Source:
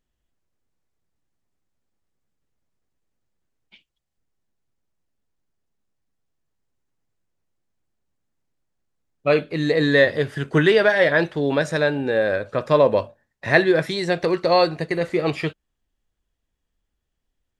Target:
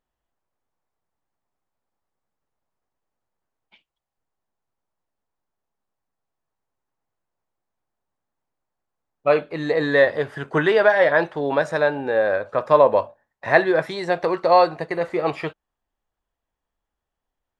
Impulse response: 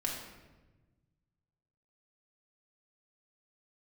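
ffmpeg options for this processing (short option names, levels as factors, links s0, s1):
-af "equalizer=f=890:w=0.7:g=14,volume=0.398"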